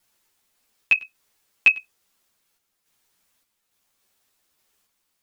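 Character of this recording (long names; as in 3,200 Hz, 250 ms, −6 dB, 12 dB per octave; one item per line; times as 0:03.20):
a quantiser's noise floor 12 bits, dither triangular
sample-and-hold tremolo
a shimmering, thickened sound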